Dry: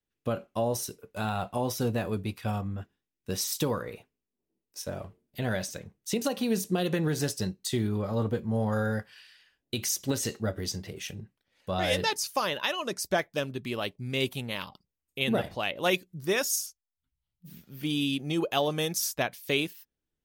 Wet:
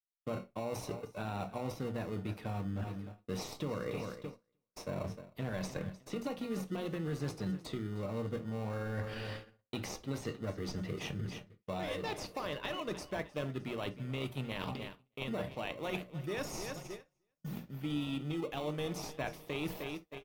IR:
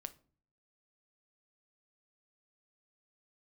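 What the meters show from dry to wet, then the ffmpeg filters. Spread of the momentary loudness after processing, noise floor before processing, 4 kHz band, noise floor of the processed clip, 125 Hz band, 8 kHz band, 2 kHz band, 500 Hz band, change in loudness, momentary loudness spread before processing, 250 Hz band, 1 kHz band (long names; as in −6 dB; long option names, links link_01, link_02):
6 LU, below −85 dBFS, −12.5 dB, −82 dBFS, −6.0 dB, −17.0 dB, −10.5 dB, −8.0 dB, −9.5 dB, 11 LU, −7.0 dB, −9.0 dB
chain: -filter_complex "[0:a]acrossover=split=84|5000[link_01][link_02][link_03];[link_01]acompressor=threshold=-56dB:ratio=4[link_04];[link_02]acompressor=threshold=-31dB:ratio=4[link_05];[link_03]acompressor=threshold=-45dB:ratio=4[link_06];[link_04][link_05][link_06]amix=inputs=3:normalize=0,asplit=2[link_07][link_08];[link_08]acrusher=samples=27:mix=1:aa=0.000001,volume=-5dB[link_09];[link_07][link_09]amix=inputs=2:normalize=0,bandreject=frequency=60:width_type=h:width=6,bandreject=frequency=120:width_type=h:width=6,bandreject=frequency=180:width_type=h:width=6,aecho=1:1:308|616|924|1232:0.126|0.0617|0.0302|0.0148,agate=range=-34dB:threshold=-51dB:ratio=16:detection=peak,areverse,acompressor=threshold=-50dB:ratio=5,areverse,bass=frequency=250:gain=0,treble=frequency=4000:gain=-8[link_10];[1:a]atrim=start_sample=2205,atrim=end_sample=3528[link_11];[link_10][link_11]afir=irnorm=-1:irlink=0,volume=16.5dB"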